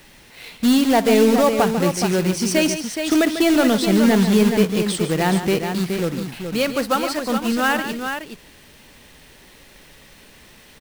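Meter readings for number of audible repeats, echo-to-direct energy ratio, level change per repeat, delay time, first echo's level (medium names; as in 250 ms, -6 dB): 3, -5.0 dB, no regular repeats, 57 ms, -19.5 dB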